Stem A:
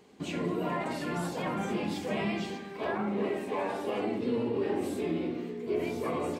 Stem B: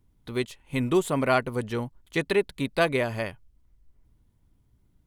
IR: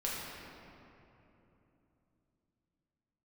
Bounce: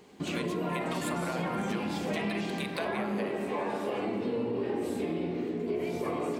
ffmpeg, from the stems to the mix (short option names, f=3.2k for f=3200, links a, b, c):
-filter_complex "[0:a]volume=0.5dB,asplit=2[a][b];[b]volume=-6.5dB[c];[1:a]highpass=f=580:w=0.5412,highpass=f=580:w=1.3066,acompressor=threshold=-35dB:ratio=6,volume=1.5dB,asplit=2[d][e];[e]volume=-10.5dB[f];[2:a]atrim=start_sample=2205[g];[c][f]amix=inputs=2:normalize=0[h];[h][g]afir=irnorm=-1:irlink=0[i];[a][d][i]amix=inputs=3:normalize=0,acompressor=threshold=-30dB:ratio=3"